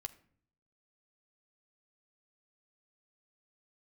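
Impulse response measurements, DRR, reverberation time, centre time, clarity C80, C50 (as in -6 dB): 8.0 dB, 0.55 s, 4 ms, 20.5 dB, 17.5 dB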